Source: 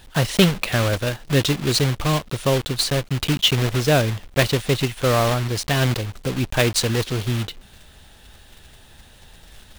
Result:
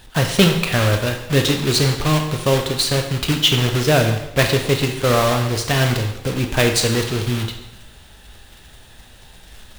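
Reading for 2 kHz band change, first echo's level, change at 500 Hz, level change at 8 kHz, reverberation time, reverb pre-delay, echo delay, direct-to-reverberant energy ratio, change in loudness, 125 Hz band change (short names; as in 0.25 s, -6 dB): +3.0 dB, none, +3.0 dB, +3.0 dB, 0.85 s, 7 ms, none, 3.5 dB, +2.5 dB, +2.0 dB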